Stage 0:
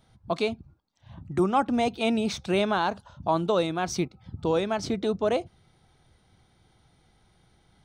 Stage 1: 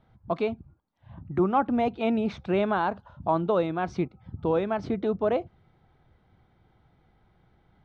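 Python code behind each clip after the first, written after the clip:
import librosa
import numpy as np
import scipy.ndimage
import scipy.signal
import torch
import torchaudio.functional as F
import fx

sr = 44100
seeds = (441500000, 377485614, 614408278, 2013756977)

y = scipy.signal.sosfilt(scipy.signal.butter(2, 2000.0, 'lowpass', fs=sr, output='sos'), x)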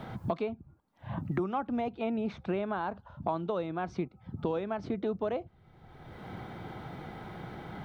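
y = fx.band_squash(x, sr, depth_pct=100)
y = y * librosa.db_to_amplitude(-7.0)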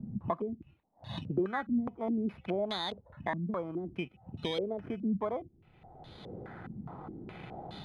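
y = fx.bit_reversed(x, sr, seeds[0], block=16)
y = fx.filter_held_lowpass(y, sr, hz=4.8, low_hz=210.0, high_hz=3800.0)
y = y * librosa.db_to_amplitude(-4.0)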